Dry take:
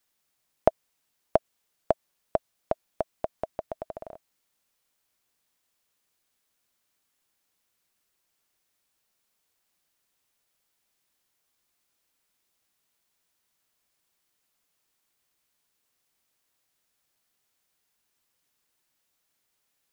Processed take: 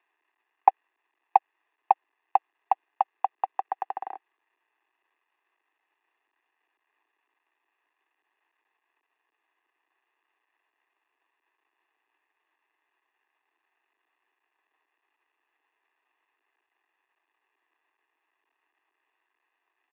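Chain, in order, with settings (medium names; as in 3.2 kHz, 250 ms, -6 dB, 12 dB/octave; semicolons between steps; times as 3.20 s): CVSD coder 32 kbps; comb 1.2 ms, depth 71%; mistuned SSB +130 Hz 210–2500 Hz; trim +5 dB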